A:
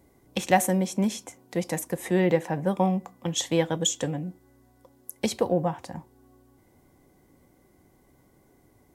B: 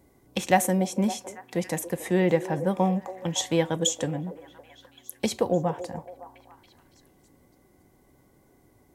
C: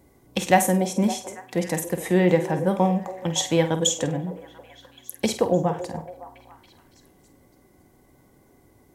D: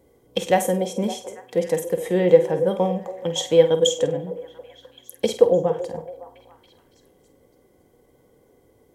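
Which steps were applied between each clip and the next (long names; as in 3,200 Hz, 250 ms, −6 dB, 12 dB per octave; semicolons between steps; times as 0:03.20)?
echo through a band-pass that steps 280 ms, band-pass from 480 Hz, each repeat 0.7 octaves, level −11 dB
flutter between parallel walls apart 8.5 metres, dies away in 0.29 s; level +3 dB
hollow resonant body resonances 480/3,200 Hz, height 15 dB, ringing for 40 ms; level −4.5 dB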